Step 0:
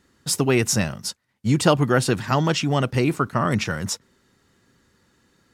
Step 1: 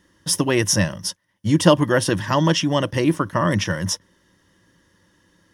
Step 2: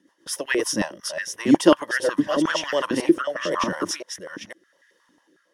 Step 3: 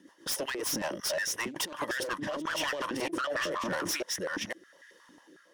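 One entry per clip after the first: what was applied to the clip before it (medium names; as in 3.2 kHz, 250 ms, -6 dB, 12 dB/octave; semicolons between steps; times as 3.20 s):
rippled EQ curve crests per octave 1.2, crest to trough 10 dB; trim +1 dB
chunks repeated in reverse 503 ms, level -3.5 dB; rotary cabinet horn 7.5 Hz, later 0.9 Hz, at 0.45 s; step-sequenced high-pass 11 Hz 260–1800 Hz; trim -4.5 dB
self-modulated delay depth 0.25 ms; compressor with a negative ratio -30 dBFS, ratio -1; saturation -25.5 dBFS, distortion -10 dB; trim -1 dB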